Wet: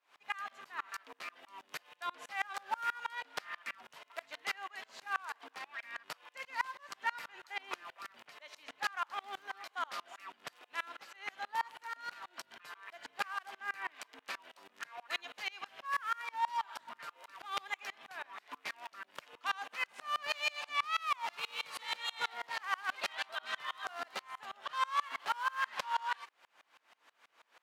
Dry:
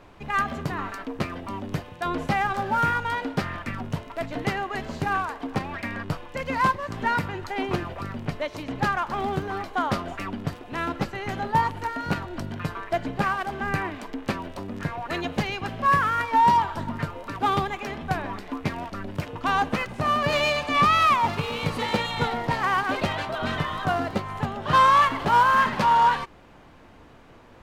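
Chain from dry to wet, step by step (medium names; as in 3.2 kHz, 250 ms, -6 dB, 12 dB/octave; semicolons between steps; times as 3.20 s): Bessel high-pass 1.5 kHz, order 2; compression 4:1, threshold -26 dBFS, peak gain reduction 6 dB; sawtooth tremolo in dB swelling 6.2 Hz, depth 29 dB; trim +1.5 dB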